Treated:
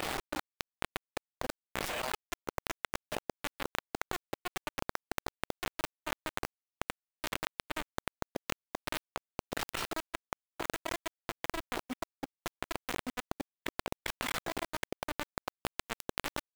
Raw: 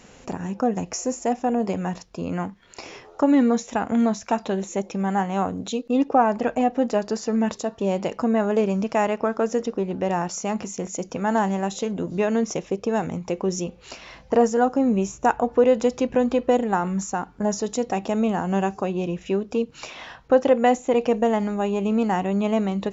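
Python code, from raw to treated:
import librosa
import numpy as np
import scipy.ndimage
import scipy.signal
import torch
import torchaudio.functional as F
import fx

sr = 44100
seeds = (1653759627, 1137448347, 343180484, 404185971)

y = fx.speed_glide(x, sr, from_pct=153, to_pct=124)
y = fx.highpass(y, sr, hz=520.0, slope=6)
y = fx.gate_flip(y, sr, shuts_db=-23.0, range_db=-37)
y = fx.fuzz(y, sr, gain_db=50.0, gate_db=-52.0)
y = np.repeat(y[::8], 8)[:len(y)]
y = fx.level_steps(y, sr, step_db=15)
y = fx.high_shelf(y, sr, hz=4200.0, db=-8.0)
y = fx.gate_flip(y, sr, shuts_db=-23.0, range_db=-29)
y = fx.echo_filtered(y, sr, ms=1168, feedback_pct=29, hz=1500.0, wet_db=-18.0)
y = fx.quant_companded(y, sr, bits=4)
y = fx.env_flatten(y, sr, amount_pct=100)
y = y * 10.0 ** (-6.5 / 20.0)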